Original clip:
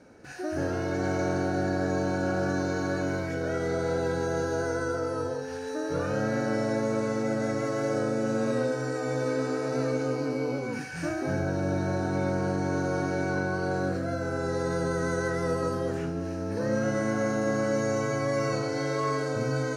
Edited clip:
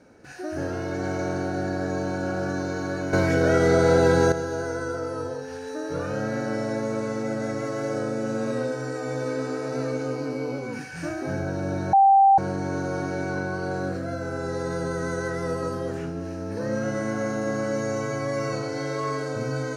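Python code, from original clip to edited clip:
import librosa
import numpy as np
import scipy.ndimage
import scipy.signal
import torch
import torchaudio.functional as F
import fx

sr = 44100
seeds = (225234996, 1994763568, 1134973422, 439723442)

y = fx.edit(x, sr, fx.clip_gain(start_s=3.13, length_s=1.19, db=10.0),
    fx.bleep(start_s=11.93, length_s=0.45, hz=784.0, db=-12.0), tone=tone)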